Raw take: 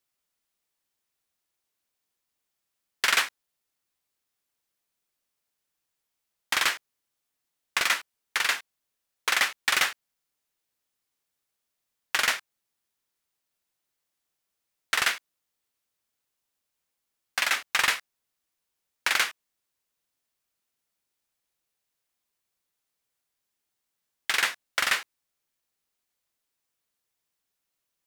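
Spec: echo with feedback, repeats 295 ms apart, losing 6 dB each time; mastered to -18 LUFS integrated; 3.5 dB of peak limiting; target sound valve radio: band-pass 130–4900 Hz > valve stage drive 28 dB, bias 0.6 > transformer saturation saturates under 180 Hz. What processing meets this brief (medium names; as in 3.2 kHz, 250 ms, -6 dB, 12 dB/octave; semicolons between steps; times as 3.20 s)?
peak limiter -12 dBFS; band-pass 130–4900 Hz; feedback delay 295 ms, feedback 50%, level -6 dB; valve stage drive 28 dB, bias 0.6; transformer saturation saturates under 180 Hz; trim +19 dB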